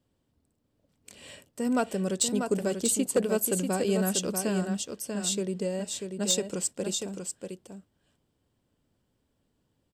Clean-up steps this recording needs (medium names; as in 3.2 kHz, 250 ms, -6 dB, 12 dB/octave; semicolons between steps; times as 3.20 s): clip repair -16.5 dBFS; inverse comb 640 ms -6 dB